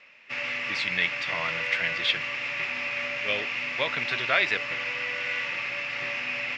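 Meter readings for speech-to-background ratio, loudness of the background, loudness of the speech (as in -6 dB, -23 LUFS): 0.5 dB, -29.0 LUFS, -28.5 LUFS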